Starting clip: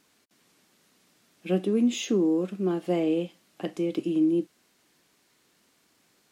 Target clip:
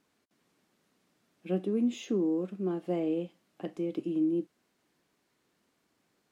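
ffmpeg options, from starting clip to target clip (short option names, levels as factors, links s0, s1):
-af "highshelf=f=2100:g=-8.5,volume=0.562"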